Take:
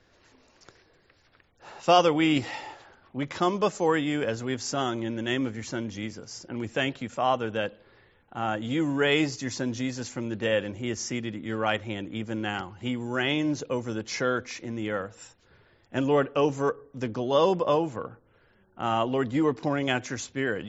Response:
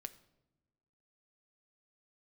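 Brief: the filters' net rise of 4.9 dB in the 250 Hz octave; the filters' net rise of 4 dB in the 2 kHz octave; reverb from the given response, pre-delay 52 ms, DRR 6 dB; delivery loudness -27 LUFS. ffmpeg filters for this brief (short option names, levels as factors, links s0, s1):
-filter_complex "[0:a]equalizer=f=250:t=o:g=6,equalizer=f=2000:t=o:g=5,asplit=2[s0][s1];[1:a]atrim=start_sample=2205,adelay=52[s2];[s1][s2]afir=irnorm=-1:irlink=0,volume=0.841[s3];[s0][s3]amix=inputs=2:normalize=0,volume=0.708"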